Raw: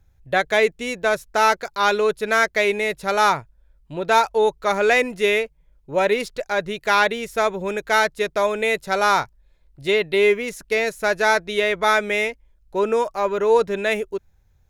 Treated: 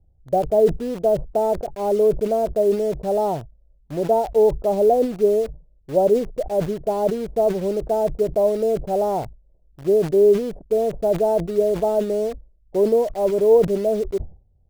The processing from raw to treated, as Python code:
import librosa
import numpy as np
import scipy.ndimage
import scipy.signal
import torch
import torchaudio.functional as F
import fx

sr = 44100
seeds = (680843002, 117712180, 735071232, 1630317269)

p1 = scipy.signal.sosfilt(scipy.signal.ellip(4, 1.0, 70, 720.0, 'lowpass', fs=sr, output='sos'), x)
p2 = fx.quant_dither(p1, sr, seeds[0], bits=6, dither='none')
p3 = p1 + (p2 * librosa.db_to_amplitude(-5.5))
y = fx.sustainer(p3, sr, db_per_s=140.0)